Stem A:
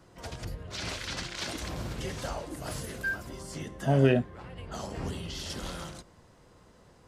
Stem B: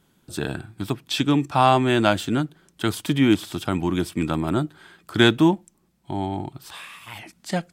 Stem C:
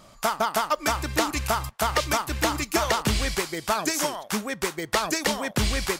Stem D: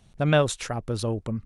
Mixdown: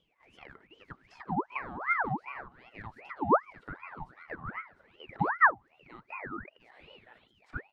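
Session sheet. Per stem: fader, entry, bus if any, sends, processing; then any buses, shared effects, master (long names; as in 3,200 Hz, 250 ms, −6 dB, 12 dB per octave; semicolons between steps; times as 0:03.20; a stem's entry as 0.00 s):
−8.0 dB, 0.00 s, no send, echo send −7.5 dB, all-pass phaser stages 2, 3.7 Hz, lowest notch 120–1,800 Hz
+2.5 dB, 0.00 s, no send, echo send −11 dB, no processing
−17.0 dB, 0.00 s, no send, no echo send, multiband upward and downward compressor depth 70%; automatic ducking −9 dB, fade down 0.40 s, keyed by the second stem
−16.0 dB, 0.00 s, no send, no echo send, comparator with hysteresis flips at −30 dBFS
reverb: not used
echo: repeating echo 703 ms, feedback 20%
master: envelope filter 310–1,600 Hz, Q 16, down, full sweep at −12 dBFS; ring modulator whose carrier an LFO sweeps 1,100 Hz, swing 60%, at 2.6 Hz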